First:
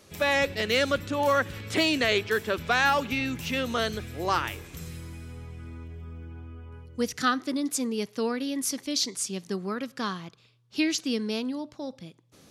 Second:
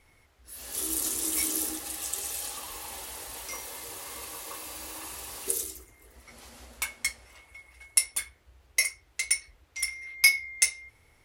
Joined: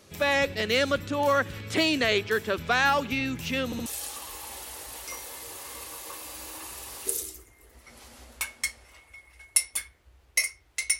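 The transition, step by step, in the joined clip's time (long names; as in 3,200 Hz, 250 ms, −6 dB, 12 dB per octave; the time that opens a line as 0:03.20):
first
0:03.65: stutter in place 0.07 s, 3 plays
0:03.86: continue with second from 0:02.27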